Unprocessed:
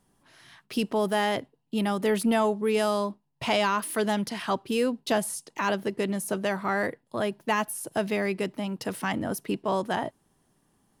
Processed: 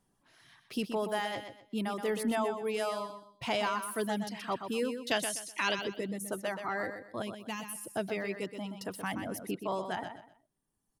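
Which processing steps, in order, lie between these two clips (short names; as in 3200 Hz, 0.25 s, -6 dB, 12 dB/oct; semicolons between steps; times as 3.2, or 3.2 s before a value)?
5.11–5.79 weighting filter D; reverb removal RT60 1.7 s; 7.22–7.78 band shelf 850 Hz -9 dB 2.8 oct; on a send: feedback echo 0.125 s, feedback 28%, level -8 dB; on the sum: gain -6.5 dB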